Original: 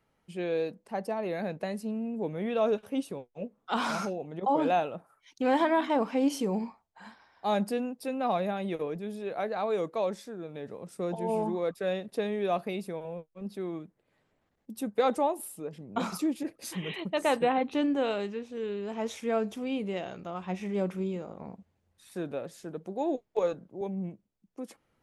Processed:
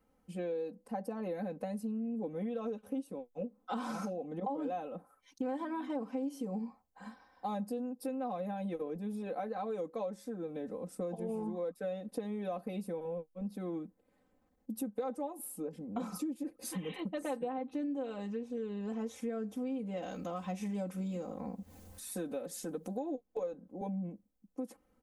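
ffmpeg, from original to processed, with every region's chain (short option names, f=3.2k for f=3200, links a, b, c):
-filter_complex "[0:a]asettb=1/sr,asplit=3[a][b][c];[a]atrim=end=20.024[d];[b]atrim=start=20.02:end=22.99,asetpts=PTS-STARTPTS,afade=t=in:d=0.004:c=qsin,afade=t=out:st=2.966:d=0.004:c=qsin,highshelf=f=2.6k:g=11,acompressor=mode=upward:threshold=-37dB:ratio=2.5:attack=3.2:release=140:knee=2.83:detection=peak[e];[c]atrim=start=22.986[f];[d][e]acrossfade=d=0.004:c1=hsin:c2=qsin[g];[g][f]acrossfade=d=0.004:c1=qsin:c2=hsin,equalizer=f=2.9k:w=0.45:g=-10.5,aecho=1:1:3.9:0.98,acompressor=threshold=-35dB:ratio=6"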